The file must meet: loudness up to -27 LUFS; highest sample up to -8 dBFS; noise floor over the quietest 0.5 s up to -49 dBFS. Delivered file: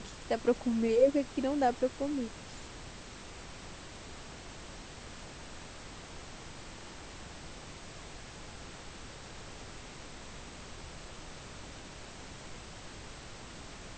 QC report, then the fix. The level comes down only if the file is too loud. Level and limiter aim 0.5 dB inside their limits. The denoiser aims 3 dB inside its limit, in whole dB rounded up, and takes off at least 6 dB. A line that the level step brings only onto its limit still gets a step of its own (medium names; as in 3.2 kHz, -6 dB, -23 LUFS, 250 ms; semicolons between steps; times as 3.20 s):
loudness -38.0 LUFS: pass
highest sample -13.5 dBFS: pass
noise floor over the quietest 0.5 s -47 dBFS: fail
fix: noise reduction 6 dB, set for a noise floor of -47 dBFS